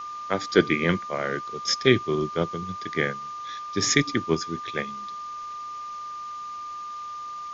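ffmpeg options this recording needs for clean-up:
ffmpeg -i in.wav -af "bandreject=frequency=1200:width=30,afftdn=noise_reduction=30:noise_floor=-36" out.wav

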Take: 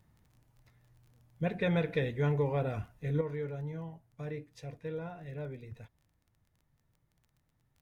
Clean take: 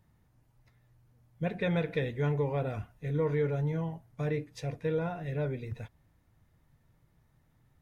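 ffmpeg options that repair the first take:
ffmpeg -i in.wav -af "adeclick=threshold=4,asetnsamples=nb_out_samples=441:pad=0,asendcmd='3.21 volume volume 8dB',volume=0dB" out.wav

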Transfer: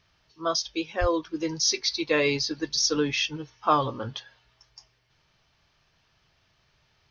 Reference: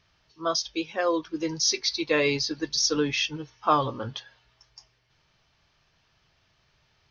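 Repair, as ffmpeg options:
ffmpeg -i in.wav -filter_complex "[0:a]asplit=3[link_01][link_02][link_03];[link_01]afade=type=out:start_time=1:duration=0.02[link_04];[link_02]highpass=frequency=140:width=0.5412,highpass=frequency=140:width=1.3066,afade=type=in:start_time=1:duration=0.02,afade=type=out:start_time=1.12:duration=0.02[link_05];[link_03]afade=type=in:start_time=1.12:duration=0.02[link_06];[link_04][link_05][link_06]amix=inputs=3:normalize=0" out.wav

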